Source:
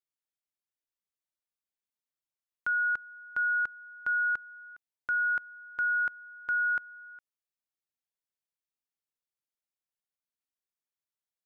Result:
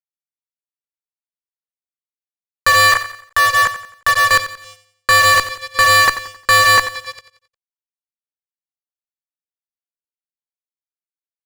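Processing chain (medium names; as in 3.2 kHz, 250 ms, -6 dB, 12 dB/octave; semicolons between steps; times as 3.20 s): local Wiener filter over 15 samples; 2.92–4.31 s: level held to a coarse grid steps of 20 dB; chorus 0.32 Hz, delay 16 ms, depth 5.9 ms; ring modulator 310 Hz; fuzz box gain 50 dB, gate -53 dBFS; feedback delay 89 ms, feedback 40%, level -13 dB; trim +4.5 dB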